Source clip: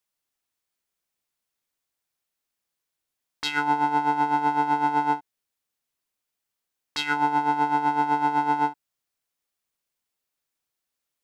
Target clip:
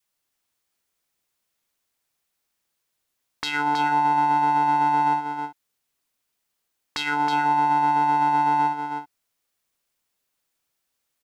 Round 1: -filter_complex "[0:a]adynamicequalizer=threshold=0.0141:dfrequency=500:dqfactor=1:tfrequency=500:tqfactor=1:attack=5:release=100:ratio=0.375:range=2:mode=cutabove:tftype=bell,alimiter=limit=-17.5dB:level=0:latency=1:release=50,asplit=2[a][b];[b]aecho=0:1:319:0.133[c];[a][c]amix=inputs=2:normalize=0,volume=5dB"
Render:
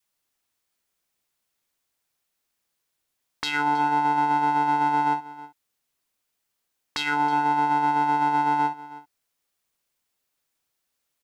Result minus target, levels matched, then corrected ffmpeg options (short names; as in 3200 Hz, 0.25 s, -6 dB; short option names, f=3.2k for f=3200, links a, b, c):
echo-to-direct -11 dB
-filter_complex "[0:a]adynamicequalizer=threshold=0.0141:dfrequency=500:dqfactor=1:tfrequency=500:tqfactor=1:attack=5:release=100:ratio=0.375:range=2:mode=cutabove:tftype=bell,alimiter=limit=-17.5dB:level=0:latency=1:release=50,asplit=2[a][b];[b]aecho=0:1:319:0.473[c];[a][c]amix=inputs=2:normalize=0,volume=5dB"